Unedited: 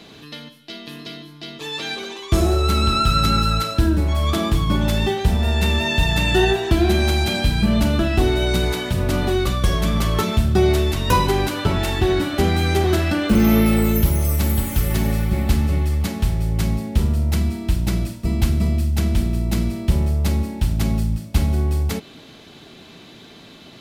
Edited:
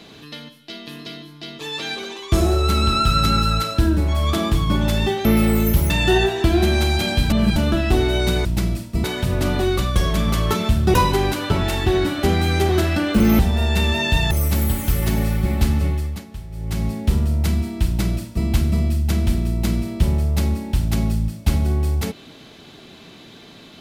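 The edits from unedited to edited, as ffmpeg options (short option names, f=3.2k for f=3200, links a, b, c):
-filter_complex "[0:a]asplit=12[a][b][c][d][e][f][g][h][i][j][k][l];[a]atrim=end=5.252[m];[b]atrim=start=13.538:end=14.192[n];[c]atrim=start=6.168:end=7.572[o];[d]atrim=start=7.568:end=7.832,asetpts=PTS-STARTPTS,areverse[p];[e]atrim=start=7.828:end=8.722[q];[f]atrim=start=17.748:end=18.342[r];[g]atrim=start=8.718:end=10.622[s];[h]atrim=start=11.088:end=13.542[t];[i]atrim=start=5.248:end=6.172[u];[j]atrim=start=14.188:end=16.14,asetpts=PTS-STARTPTS,afade=t=out:st=1.532:d=0.42:silence=0.199526[v];[k]atrim=start=16.14:end=16.38,asetpts=PTS-STARTPTS,volume=-14dB[w];[l]atrim=start=16.38,asetpts=PTS-STARTPTS,afade=t=in:d=0.42:silence=0.199526[x];[m][n]acrossfade=d=0.004:c1=hsin:c2=hsin[y];[y][o]acrossfade=d=0.004:c1=hsin:c2=hsin[z];[z][p]acrossfade=d=0.004:c1=hsin:c2=hsin[aa];[aa][q]acrossfade=d=0.004:c1=hsin:c2=hsin[ab];[ab][r]acrossfade=d=0.004:c1=hsin:c2=hsin[ac];[ac][s]acrossfade=d=0.004:c1=hsin:c2=hsin[ad];[ad][t]acrossfade=d=0.004:c1=hsin:c2=hsin[ae];[ae][u]acrossfade=d=0.004:c1=hsin:c2=hsin[af];[v][w][x]concat=n=3:v=0:a=1[ag];[af][ag]acrossfade=d=0.004:c1=hsin:c2=hsin"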